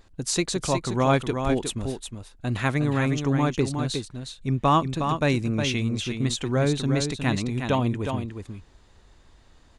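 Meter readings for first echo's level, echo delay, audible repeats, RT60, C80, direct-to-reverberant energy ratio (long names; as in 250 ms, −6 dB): −6.5 dB, 362 ms, 1, no reverb audible, no reverb audible, no reverb audible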